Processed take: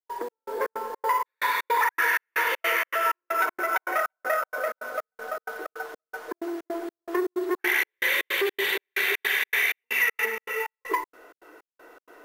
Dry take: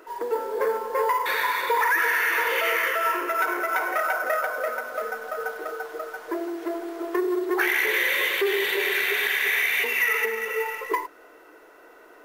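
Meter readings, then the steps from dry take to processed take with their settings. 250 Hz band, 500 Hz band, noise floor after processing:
-3.0 dB, -4.5 dB, under -85 dBFS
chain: dynamic bell 460 Hz, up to -5 dB, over -38 dBFS, Q 4; trance gate ".xx..xx.xx" 159 bpm -60 dB

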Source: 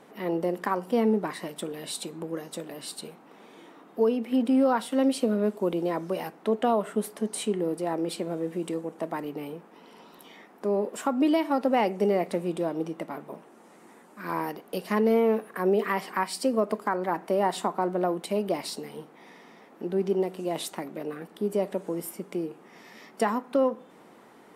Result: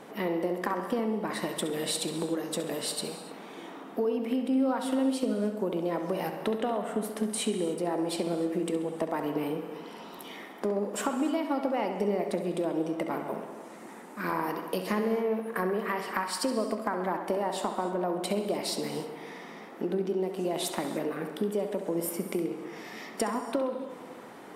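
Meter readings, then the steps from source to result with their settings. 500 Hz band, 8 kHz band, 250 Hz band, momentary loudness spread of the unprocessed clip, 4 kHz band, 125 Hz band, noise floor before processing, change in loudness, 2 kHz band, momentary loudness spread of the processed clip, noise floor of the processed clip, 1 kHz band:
-3.0 dB, +2.5 dB, -2.5 dB, 14 LU, +2.0 dB, -1.5 dB, -53 dBFS, -3.0 dB, -0.5 dB, 13 LU, -46 dBFS, -3.0 dB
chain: compression, threshold -33 dBFS, peak gain reduction 14 dB; tape echo 67 ms, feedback 72%, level -8 dB, low-pass 4.1 kHz; gated-style reverb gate 330 ms flat, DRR 11 dB; trim +5.5 dB

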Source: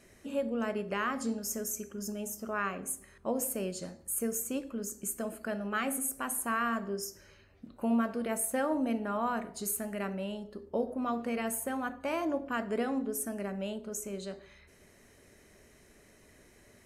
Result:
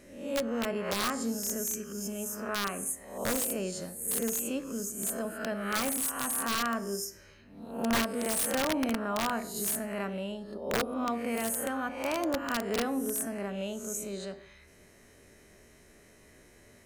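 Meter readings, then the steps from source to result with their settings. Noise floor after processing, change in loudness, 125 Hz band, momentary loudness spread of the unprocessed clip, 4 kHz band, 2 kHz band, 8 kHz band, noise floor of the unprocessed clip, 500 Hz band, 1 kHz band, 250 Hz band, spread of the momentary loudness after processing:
-58 dBFS, +2.5 dB, +2.0 dB, 8 LU, +10.0 dB, +2.5 dB, +3.5 dB, -60 dBFS, +1.5 dB, +1.0 dB, +0.5 dB, 7 LU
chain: reverse spectral sustain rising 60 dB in 0.63 s; integer overflow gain 22 dB

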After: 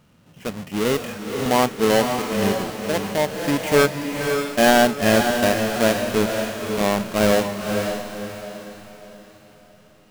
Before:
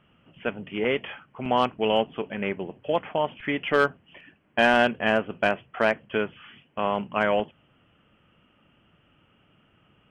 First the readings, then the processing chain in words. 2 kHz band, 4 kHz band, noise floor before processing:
+2.5 dB, +7.0 dB, -64 dBFS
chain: square wave that keeps the level; echo that smears into a reverb 529 ms, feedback 41%, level -5.5 dB; harmonic-percussive split harmonic +9 dB; trim -6.5 dB

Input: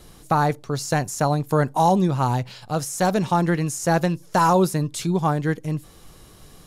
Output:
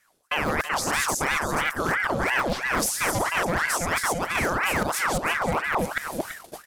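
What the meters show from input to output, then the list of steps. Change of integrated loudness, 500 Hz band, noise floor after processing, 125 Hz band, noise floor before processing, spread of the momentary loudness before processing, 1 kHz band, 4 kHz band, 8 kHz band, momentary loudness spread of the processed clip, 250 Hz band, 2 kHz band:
-2.5 dB, -5.0 dB, -56 dBFS, -12.0 dB, -48 dBFS, 9 LU, -4.0 dB, +4.0 dB, +3.0 dB, 4 LU, -9.0 dB, +8.0 dB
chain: chunks repeated in reverse 230 ms, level -1 dB; reverse; compression 16:1, threshold -26 dBFS, peak gain reduction 16 dB; reverse; treble shelf 5.2 kHz +6.5 dB; delay 333 ms -11.5 dB; in parallel at -10 dB: integer overflow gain 20.5 dB; on the sum: gate -37 dBFS, range -24 dB; hard clipper -20 dBFS, distortion -28 dB; ring modulator with a swept carrier 1.1 kHz, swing 70%, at 3 Hz; trim +5 dB

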